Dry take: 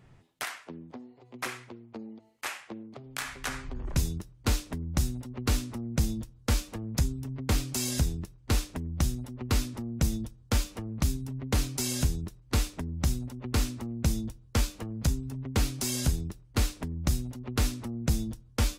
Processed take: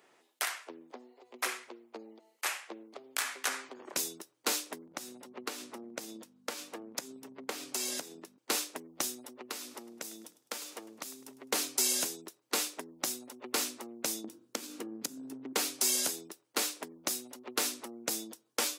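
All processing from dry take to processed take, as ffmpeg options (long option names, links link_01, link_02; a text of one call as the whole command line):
ffmpeg -i in.wav -filter_complex "[0:a]asettb=1/sr,asplit=3[link_01][link_02][link_03];[link_01]atrim=end=4.864[link_04];[link_02]atrim=start=4.86:end=8.38,asetpts=PTS-STARTPTS,afade=type=in:duration=0.004:curve=qsin,afade=type=out:start_time=3.516:duration=0.004:curve=qsin,aeval=exprs='val(0)+0.0126*(sin(2*PI*50*n/s)+sin(2*PI*2*50*n/s)/2+sin(2*PI*3*50*n/s)/3+sin(2*PI*4*50*n/s)/4+sin(2*PI*5*50*n/s)/5)':channel_layout=same,highshelf=frequency=4600:gain=-7.5,acompressor=threshold=-29dB:ratio=4:attack=3.2:release=140:knee=1:detection=peak[link_05];[link_03]atrim=start=8.376[link_06];[link_04][link_05]acrossfade=duration=0.004:curve1=hsin:curve2=qsin[link_07];[link_07][link_06]acrossfade=duration=0.004:curve1=qsin:curve2=hsin,asettb=1/sr,asplit=3[link_08][link_09][link_10];[link_08]atrim=end=9.324[link_11];[link_09]atrim=start=9.32:end=11.51,asetpts=PTS-STARTPTS,afade=type=in:duration=0.004:curve=qsin,afade=type=out:start_time=2.186:duration=0.004:curve=qsin,acompressor=threshold=-37dB:ratio=2.5:attack=3.2:release=140:knee=1:detection=peak,asplit=5[link_12][link_13][link_14][link_15][link_16];[link_13]adelay=103,afreqshift=-37,volume=-17dB[link_17];[link_14]adelay=206,afreqshift=-74,volume=-24.5dB[link_18];[link_15]adelay=309,afreqshift=-111,volume=-32.1dB[link_19];[link_16]adelay=412,afreqshift=-148,volume=-39.6dB[link_20];[link_12][link_17][link_18][link_19][link_20]amix=inputs=5:normalize=0,atrim=end_sample=96579[link_21];[link_10]atrim=start=11.506[link_22];[link_11][link_21]acrossfade=duration=0.004:curve1=hsin:curve2=qsin[link_23];[link_23][link_22]acrossfade=duration=0.004:curve1=qsin:curve2=hsin,asettb=1/sr,asplit=3[link_24][link_25][link_26];[link_24]atrim=end=14.244[link_27];[link_25]atrim=start=14.24:end=15.53,asetpts=PTS-STARTPTS,afade=type=in:duration=0.004:curve=qsin,afade=type=out:start_time=1.286:duration=0.004:curve=qsin,lowshelf=frequency=420:width_type=q:width=1.5:gain=10.5,bandreject=frequency=49.3:width_type=h:width=4,bandreject=frequency=98.6:width_type=h:width=4,bandreject=frequency=147.9:width_type=h:width=4,bandreject=frequency=197.2:width_type=h:width=4,bandreject=frequency=246.5:width_type=h:width=4,bandreject=frequency=295.8:width_type=h:width=4,bandreject=frequency=345.1:width_type=h:width=4,bandreject=frequency=394.4:width_type=h:width=4,bandreject=frequency=443.7:width_type=h:width=4,bandreject=frequency=493:width_type=h:width=4,bandreject=frequency=542.3:width_type=h:width=4,bandreject=frequency=591.6:width_type=h:width=4,bandreject=frequency=640.9:width_type=h:width=4,bandreject=frequency=690.2:width_type=h:width=4,bandreject=frequency=739.5:width_type=h:width=4,bandreject=frequency=788.8:width_type=h:width=4,bandreject=frequency=838.1:width_type=h:width=4,bandreject=frequency=887.4:width_type=h:width=4,bandreject=frequency=936.7:width_type=h:width=4,bandreject=frequency=986:width_type=h:width=4,bandreject=frequency=1035.3:width_type=h:width=4,bandreject=frequency=1084.6:width_type=h:width=4,bandreject=frequency=1133.9:width_type=h:width=4,bandreject=frequency=1183.2:width_type=h:width=4,bandreject=frequency=1232.5:width_type=h:width=4,bandreject=frequency=1281.8:width_type=h:width=4,bandreject=frequency=1331.1:width_type=h:width=4,bandreject=frequency=1380.4:width_type=h:width=4,bandreject=frequency=1429.7:width_type=h:width=4,bandreject=frequency=1479:width_type=h:width=4,bandreject=frequency=1528.3:width_type=h:width=4,bandreject=frequency=1577.6:width_type=h:width=4,bandreject=frequency=1626.9:width_type=h:width=4,bandreject=frequency=1676.2:width_type=h:width=4,acompressor=threshold=-26dB:ratio=16:attack=3.2:release=140:knee=1:detection=peak[link_28];[link_26]atrim=start=15.526[link_29];[link_27][link_28]acrossfade=duration=0.004:curve1=hsin:curve2=qsin[link_30];[link_30][link_29]acrossfade=duration=0.004:curve1=qsin:curve2=hsin,highpass=frequency=340:width=0.5412,highpass=frequency=340:width=1.3066,highshelf=frequency=5400:gain=6.5" out.wav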